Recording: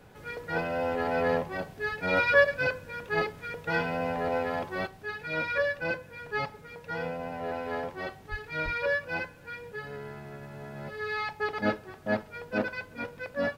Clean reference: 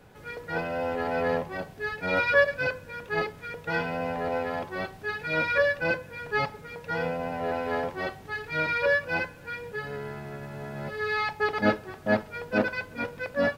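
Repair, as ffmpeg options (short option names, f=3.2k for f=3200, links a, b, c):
-filter_complex "[0:a]asplit=3[a][b][c];[a]afade=t=out:st=8.3:d=0.02[d];[b]highpass=f=140:w=0.5412,highpass=f=140:w=1.3066,afade=t=in:st=8.3:d=0.02,afade=t=out:st=8.42:d=0.02[e];[c]afade=t=in:st=8.42:d=0.02[f];[d][e][f]amix=inputs=3:normalize=0,asplit=3[g][h][i];[g]afade=t=out:st=8.64:d=0.02[j];[h]highpass=f=140:w=0.5412,highpass=f=140:w=1.3066,afade=t=in:st=8.64:d=0.02,afade=t=out:st=8.76:d=0.02[k];[i]afade=t=in:st=8.76:d=0.02[l];[j][k][l]amix=inputs=3:normalize=0,asetnsamples=n=441:p=0,asendcmd='4.87 volume volume 4.5dB',volume=0dB"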